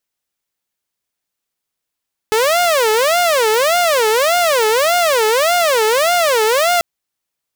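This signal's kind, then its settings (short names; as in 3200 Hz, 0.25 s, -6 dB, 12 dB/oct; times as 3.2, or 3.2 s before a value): siren wail 430–710 Hz 1.7/s saw -9 dBFS 4.49 s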